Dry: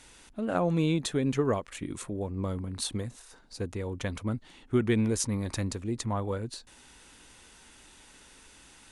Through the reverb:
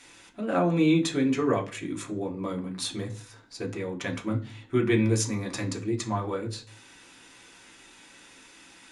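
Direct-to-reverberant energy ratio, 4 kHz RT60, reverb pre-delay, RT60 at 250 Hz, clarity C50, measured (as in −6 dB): 0.5 dB, 0.40 s, 3 ms, 0.50 s, 14.0 dB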